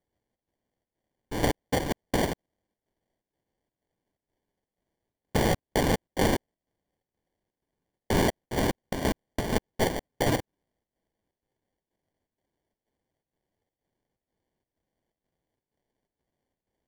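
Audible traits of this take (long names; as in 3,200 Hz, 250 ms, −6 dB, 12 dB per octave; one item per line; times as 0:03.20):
chopped level 2.1 Hz, depth 60%, duty 75%
phaser sweep stages 8, 1.3 Hz, lowest notch 420–1,700 Hz
aliases and images of a low sample rate 1,300 Hz, jitter 0%
Ogg Vorbis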